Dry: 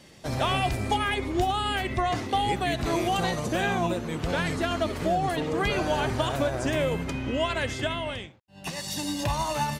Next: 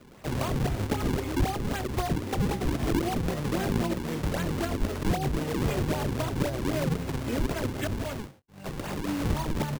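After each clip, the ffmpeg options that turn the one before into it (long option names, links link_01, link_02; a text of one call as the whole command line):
ffmpeg -i in.wav -filter_complex "[0:a]asplit=2[link_01][link_02];[link_02]adelay=21,volume=-10dB[link_03];[link_01][link_03]amix=inputs=2:normalize=0,acrusher=samples=40:mix=1:aa=0.000001:lfo=1:lforange=64:lforate=3.8,acrossover=split=420[link_04][link_05];[link_05]acompressor=threshold=-34dB:ratio=2.5[link_06];[link_04][link_06]amix=inputs=2:normalize=0" out.wav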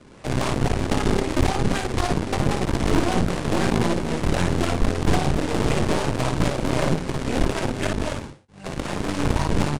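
ffmpeg -i in.wav -filter_complex "[0:a]asplit=2[link_01][link_02];[link_02]aecho=0:1:23|56:0.335|0.631[link_03];[link_01][link_03]amix=inputs=2:normalize=0,aresample=22050,aresample=44100,aeval=exprs='0.251*(cos(1*acos(clip(val(0)/0.251,-1,1)))-cos(1*PI/2))+0.0562*(cos(6*acos(clip(val(0)/0.251,-1,1)))-cos(6*PI/2))':channel_layout=same,volume=3dB" out.wav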